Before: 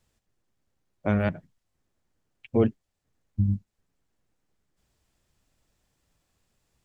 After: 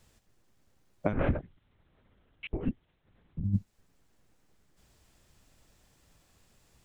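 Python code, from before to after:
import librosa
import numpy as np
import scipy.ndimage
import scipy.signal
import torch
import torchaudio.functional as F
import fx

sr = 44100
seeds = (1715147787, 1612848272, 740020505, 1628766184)

y = fx.over_compress(x, sr, threshold_db=-28.0, ratio=-0.5)
y = fx.lpc_vocoder(y, sr, seeds[0], excitation='whisper', order=8, at=(1.13, 3.44))
y = y * 10.0 ** (1.5 / 20.0)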